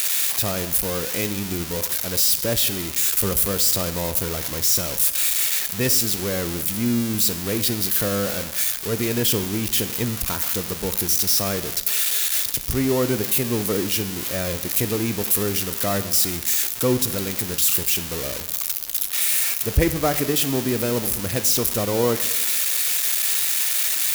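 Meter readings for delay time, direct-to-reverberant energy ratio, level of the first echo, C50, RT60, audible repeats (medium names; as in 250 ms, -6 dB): no echo, 11.0 dB, no echo, 13.5 dB, 1.1 s, no echo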